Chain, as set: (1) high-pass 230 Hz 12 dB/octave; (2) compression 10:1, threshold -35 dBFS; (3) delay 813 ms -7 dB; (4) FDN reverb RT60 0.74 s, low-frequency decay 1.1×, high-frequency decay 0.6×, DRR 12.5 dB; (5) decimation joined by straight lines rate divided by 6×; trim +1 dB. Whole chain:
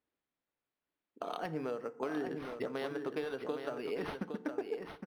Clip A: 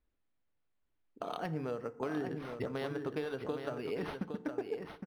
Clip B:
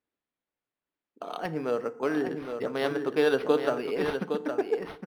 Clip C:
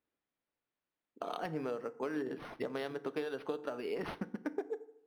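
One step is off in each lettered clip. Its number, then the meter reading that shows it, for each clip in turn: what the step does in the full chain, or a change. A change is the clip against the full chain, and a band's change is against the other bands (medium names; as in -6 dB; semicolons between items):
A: 1, 125 Hz band +6.5 dB; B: 2, mean gain reduction 8.0 dB; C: 3, momentary loudness spread change +1 LU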